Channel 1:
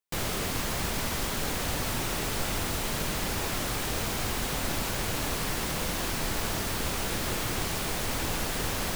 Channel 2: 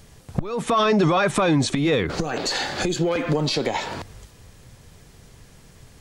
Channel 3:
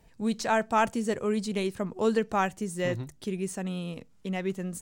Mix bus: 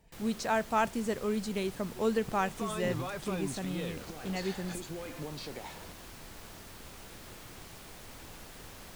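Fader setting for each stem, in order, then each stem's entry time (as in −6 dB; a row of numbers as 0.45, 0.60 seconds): −18.0, −19.5, −4.0 decibels; 0.00, 1.90, 0.00 seconds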